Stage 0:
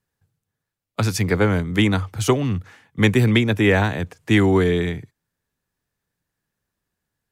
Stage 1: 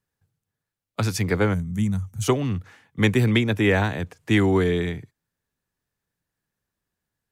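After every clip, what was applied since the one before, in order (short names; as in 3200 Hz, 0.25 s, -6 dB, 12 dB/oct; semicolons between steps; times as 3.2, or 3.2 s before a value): spectral gain 1.54–2.22, 240–5600 Hz -17 dB; gain -3 dB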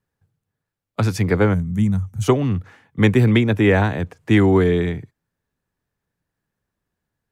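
high shelf 2400 Hz -8.5 dB; gain +5 dB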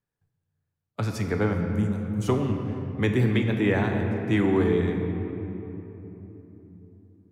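reverb RT60 3.6 s, pre-delay 7 ms, DRR 3 dB; gain -9 dB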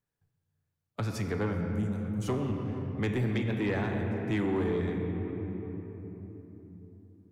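in parallel at 0 dB: compressor, threshold -31 dBFS, peak gain reduction 13 dB; on the sum: soft clip -15.5 dBFS, distortion -16 dB; gain -7 dB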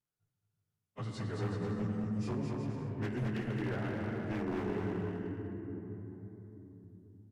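inharmonic rescaling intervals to 92%; wavefolder -26 dBFS; bouncing-ball echo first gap 0.22 s, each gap 0.7×, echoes 5; gain -5 dB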